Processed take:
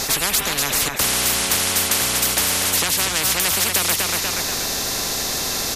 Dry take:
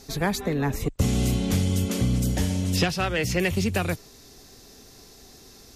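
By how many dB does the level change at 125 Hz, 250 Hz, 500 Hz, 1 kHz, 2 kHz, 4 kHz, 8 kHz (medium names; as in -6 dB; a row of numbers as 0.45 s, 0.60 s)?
-9.0 dB, -6.0 dB, +0.5 dB, +7.5 dB, +9.0 dB, +14.5 dB, +18.0 dB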